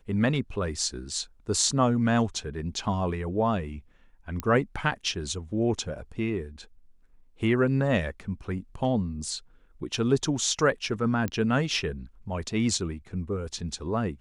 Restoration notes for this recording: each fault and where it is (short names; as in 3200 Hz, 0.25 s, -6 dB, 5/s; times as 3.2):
4.4 pop -15 dBFS
11.28 pop -17 dBFS